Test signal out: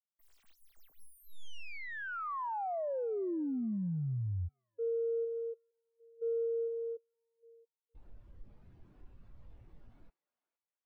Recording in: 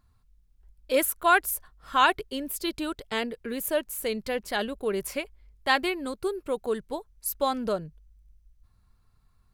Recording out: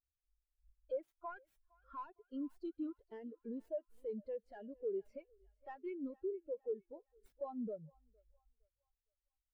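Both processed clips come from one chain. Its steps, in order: tracing distortion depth 0.23 ms; compressor 5:1, threshold -36 dBFS; soft clip -36 dBFS; thinning echo 0.461 s, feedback 74%, high-pass 410 Hz, level -10 dB; spectral expander 2.5:1; gain +1.5 dB

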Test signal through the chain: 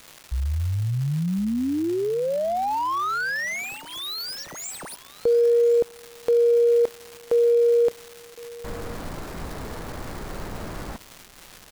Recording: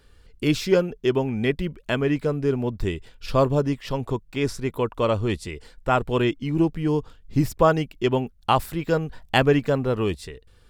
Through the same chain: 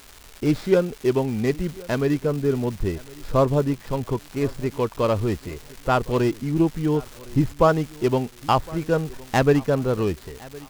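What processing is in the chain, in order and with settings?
median filter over 15 samples; crackle 550/s -33 dBFS; feedback echo 1.061 s, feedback 30%, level -22 dB; gain +1 dB

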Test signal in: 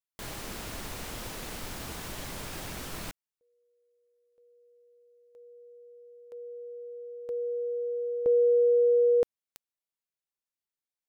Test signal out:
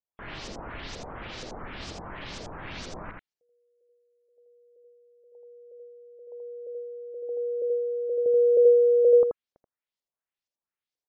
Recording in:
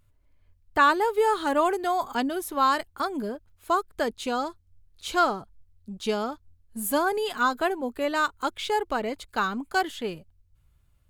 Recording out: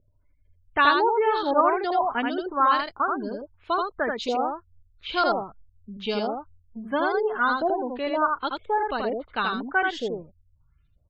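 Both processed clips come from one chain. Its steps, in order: LFO low-pass saw up 2.1 Hz 480–6400 Hz; spectral gate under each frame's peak -30 dB strong; echo 81 ms -3.5 dB; gain -2 dB

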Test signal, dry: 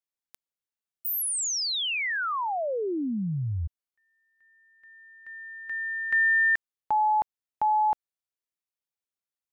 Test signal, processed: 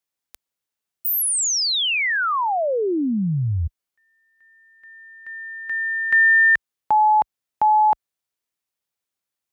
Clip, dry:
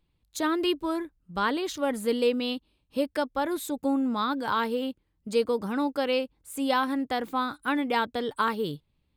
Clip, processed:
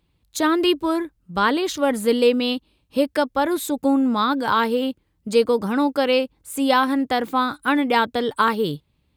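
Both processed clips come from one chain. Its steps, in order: HPF 41 Hz 12 dB/oct; gain +7.5 dB

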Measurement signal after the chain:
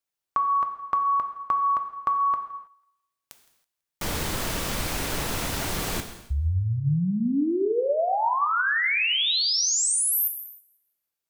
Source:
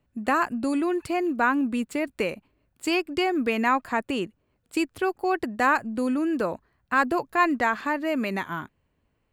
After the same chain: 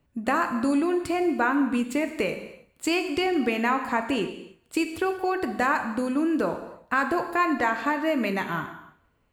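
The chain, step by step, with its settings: compressor 2:1, threshold -26 dBFS; on a send: thinning echo 0.165 s, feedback 30%, high-pass 410 Hz, level -23 dB; on the sum: non-linear reverb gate 0.34 s falling, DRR 6 dB; gain +2.5 dB

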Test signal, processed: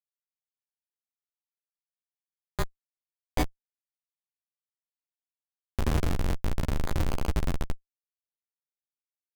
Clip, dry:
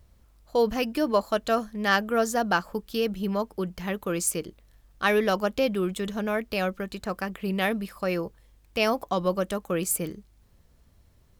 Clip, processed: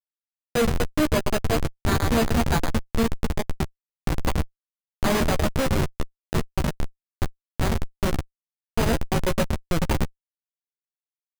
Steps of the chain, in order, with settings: high shelf 9800 Hz +2 dB; reverb removal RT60 0.85 s; bell 180 Hz +3 dB 2 oct; split-band echo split 380 Hz, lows 0.543 s, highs 0.111 s, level -5 dB; careless resampling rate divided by 8×, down none, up zero stuff; Schmitt trigger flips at -1.5 dBFS; doubler 13 ms -7 dB; gain -3.5 dB

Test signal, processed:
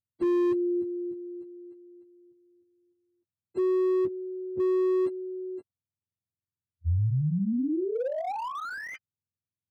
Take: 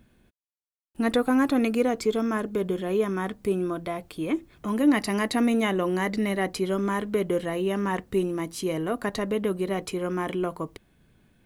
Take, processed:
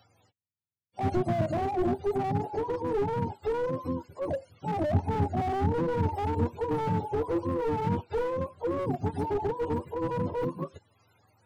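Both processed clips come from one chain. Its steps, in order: spectrum mirrored in octaves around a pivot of 420 Hz; slew limiter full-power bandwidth 26 Hz

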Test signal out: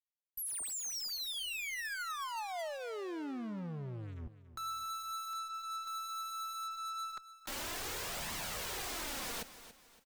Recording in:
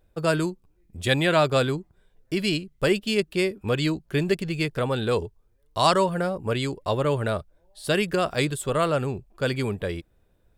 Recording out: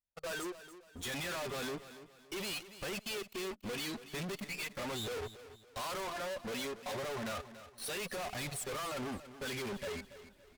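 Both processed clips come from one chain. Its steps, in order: spectral noise reduction 16 dB; low shelf 290 Hz -11.5 dB; sample leveller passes 5; reverse; upward compressor, threshold -36 dBFS; reverse; flange 0.36 Hz, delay 0.9 ms, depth 4.6 ms, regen +1%; tube stage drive 37 dB, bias 0.2; feedback echo 0.283 s, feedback 36%, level -14 dB; gain -1.5 dB

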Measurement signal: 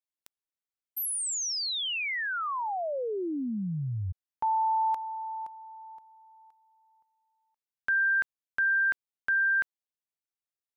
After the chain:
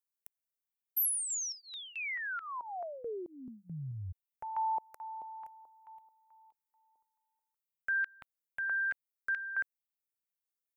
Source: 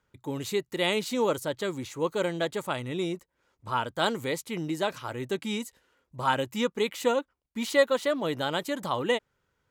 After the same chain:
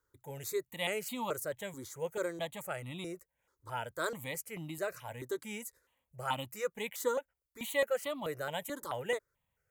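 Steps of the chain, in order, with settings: high shelf 8700 Hz +12 dB; step phaser 4.6 Hz 710–1600 Hz; gain -5.5 dB

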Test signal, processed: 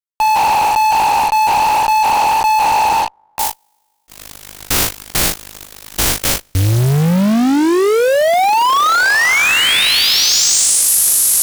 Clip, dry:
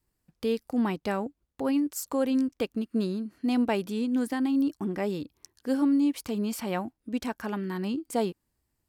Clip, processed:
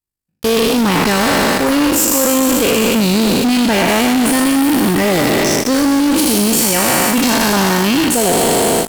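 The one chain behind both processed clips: spectral trails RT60 2.96 s; gate with hold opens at -23 dBFS; high shelf 2900 Hz +9.5 dB; reverse; compressor 6:1, threshold -27 dBFS; reverse; AM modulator 51 Hz, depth 40%; in parallel at -6.5 dB: fuzz box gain 50 dB, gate -47 dBFS; on the sum: gain +6.5 dB

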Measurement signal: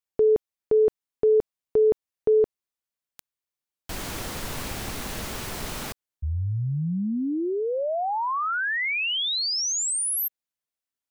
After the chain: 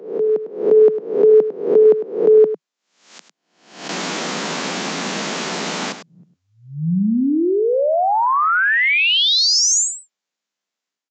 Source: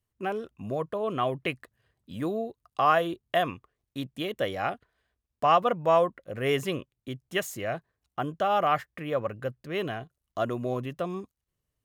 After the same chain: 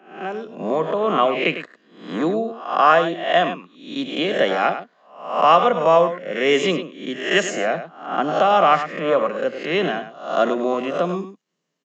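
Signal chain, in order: spectral swells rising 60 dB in 0.57 s; steep high-pass 160 Hz 72 dB/oct; AGC gain up to 9 dB; echo 0.102 s -11 dB; downsampling 16000 Hz

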